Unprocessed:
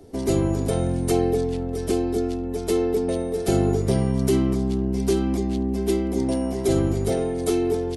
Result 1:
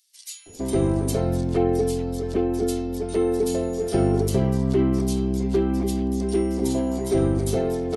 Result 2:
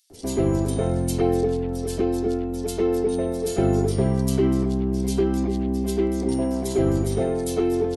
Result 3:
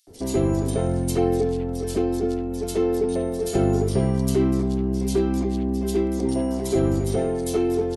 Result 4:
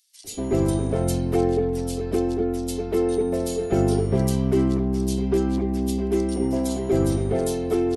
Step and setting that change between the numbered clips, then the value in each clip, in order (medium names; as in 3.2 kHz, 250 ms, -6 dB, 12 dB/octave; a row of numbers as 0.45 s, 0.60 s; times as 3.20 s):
bands offset in time, time: 460 ms, 100 ms, 70 ms, 240 ms